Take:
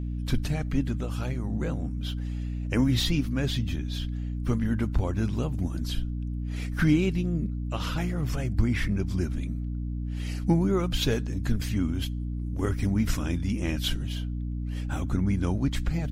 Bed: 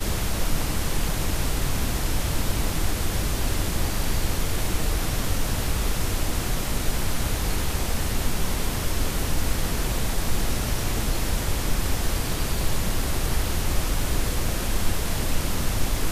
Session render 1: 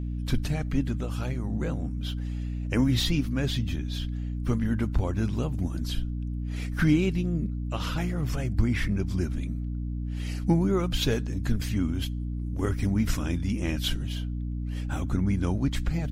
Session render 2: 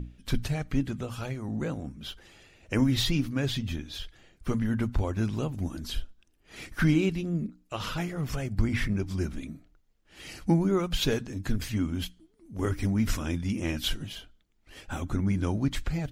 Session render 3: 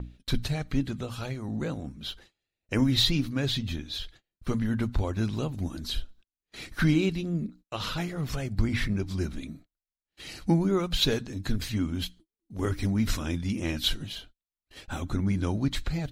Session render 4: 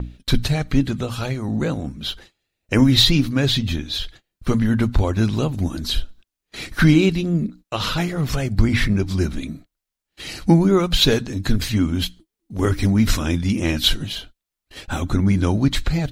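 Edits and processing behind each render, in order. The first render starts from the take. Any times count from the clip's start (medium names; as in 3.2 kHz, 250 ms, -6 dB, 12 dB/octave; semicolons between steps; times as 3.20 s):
no audible change
hum notches 60/120/180/240/300 Hz
peaking EQ 4 kHz +9 dB 0.3 oct; gate -48 dBFS, range -32 dB
trim +9.5 dB; peak limiter -3 dBFS, peak gain reduction 1.5 dB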